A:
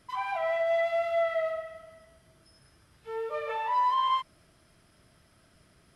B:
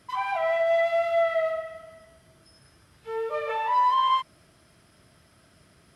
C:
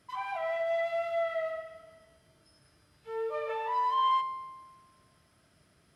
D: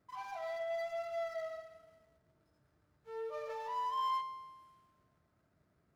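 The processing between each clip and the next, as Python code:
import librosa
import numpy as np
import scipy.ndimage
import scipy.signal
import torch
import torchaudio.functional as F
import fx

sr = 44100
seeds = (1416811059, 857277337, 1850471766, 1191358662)

y1 = scipy.signal.sosfilt(scipy.signal.butter(2, 56.0, 'highpass', fs=sr, output='sos'), x)
y1 = F.gain(torch.from_numpy(y1), 4.0).numpy()
y2 = fx.comb_fb(y1, sr, f0_hz=150.0, decay_s=1.3, harmonics='all', damping=0.0, mix_pct=60)
y3 = scipy.ndimage.median_filter(y2, 15, mode='constant')
y3 = F.gain(torch.from_numpy(y3), -7.5).numpy()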